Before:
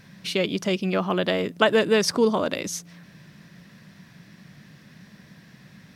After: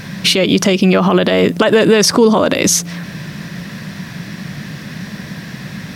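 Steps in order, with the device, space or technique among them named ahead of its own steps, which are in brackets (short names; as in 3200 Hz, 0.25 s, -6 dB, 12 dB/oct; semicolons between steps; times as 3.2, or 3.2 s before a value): loud club master (compressor 2:1, threshold -24 dBFS, peak gain reduction 6.5 dB; hard clip -10.5 dBFS, distortion -41 dB; maximiser +22 dB); gain -1 dB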